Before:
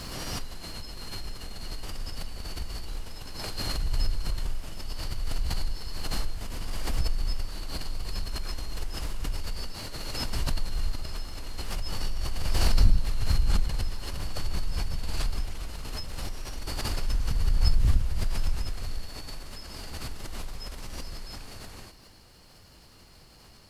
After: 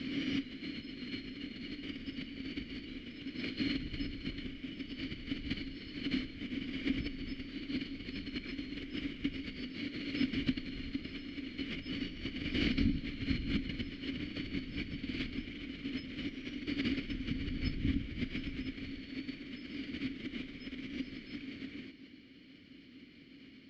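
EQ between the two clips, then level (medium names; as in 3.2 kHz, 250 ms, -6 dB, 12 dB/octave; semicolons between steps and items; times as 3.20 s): vowel filter i; distance through air 190 m; +15.0 dB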